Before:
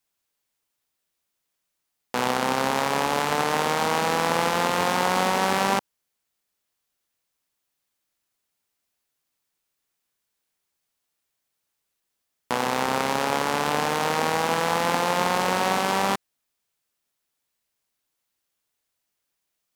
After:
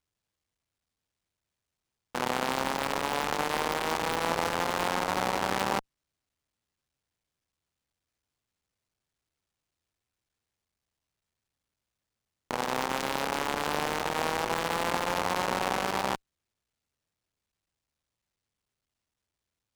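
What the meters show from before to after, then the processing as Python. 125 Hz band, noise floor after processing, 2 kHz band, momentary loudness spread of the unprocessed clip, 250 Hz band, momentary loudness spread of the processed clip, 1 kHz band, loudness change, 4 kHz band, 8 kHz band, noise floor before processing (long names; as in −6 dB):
−7.0 dB, below −85 dBFS, −5.5 dB, 4 LU, −6.5 dB, 3 LU, −6.5 dB, −6.0 dB, −5.5 dB, −6.5 dB, −80 dBFS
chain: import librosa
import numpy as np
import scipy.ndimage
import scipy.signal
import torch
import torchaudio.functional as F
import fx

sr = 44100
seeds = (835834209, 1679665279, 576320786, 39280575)

y = fx.cycle_switch(x, sr, every=3, mode='muted')
y = fx.running_max(y, sr, window=3)
y = y * 10.0 ** (-5.0 / 20.0)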